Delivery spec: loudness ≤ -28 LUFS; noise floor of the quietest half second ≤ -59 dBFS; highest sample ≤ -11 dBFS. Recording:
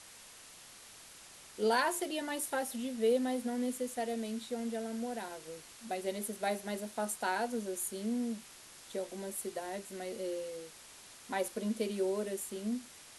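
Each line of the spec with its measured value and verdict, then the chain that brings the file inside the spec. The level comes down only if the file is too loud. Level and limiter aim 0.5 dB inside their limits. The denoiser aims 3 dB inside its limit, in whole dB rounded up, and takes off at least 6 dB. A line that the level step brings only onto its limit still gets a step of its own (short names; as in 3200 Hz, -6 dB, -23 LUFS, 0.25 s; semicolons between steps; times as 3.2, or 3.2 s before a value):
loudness -36.5 LUFS: OK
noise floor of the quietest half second -54 dBFS: fail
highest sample -17.5 dBFS: OK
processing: denoiser 8 dB, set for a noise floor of -54 dBFS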